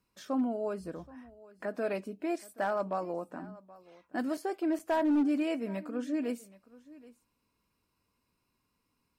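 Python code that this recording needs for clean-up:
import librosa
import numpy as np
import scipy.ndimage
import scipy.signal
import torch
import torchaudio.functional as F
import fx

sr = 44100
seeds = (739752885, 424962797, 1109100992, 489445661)

y = fx.fix_declip(x, sr, threshold_db=-23.0)
y = fx.fix_interpolate(y, sr, at_s=(4.37, 4.79), length_ms=4.7)
y = fx.fix_echo_inverse(y, sr, delay_ms=776, level_db=-20.5)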